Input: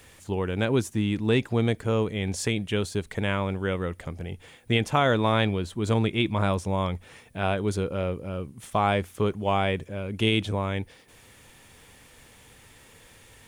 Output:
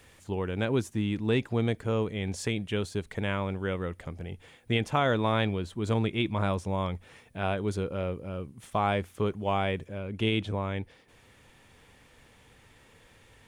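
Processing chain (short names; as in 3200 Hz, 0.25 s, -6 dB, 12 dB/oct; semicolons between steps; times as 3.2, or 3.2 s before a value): high shelf 6000 Hz -5 dB, from 9.98 s -11.5 dB; gain -3.5 dB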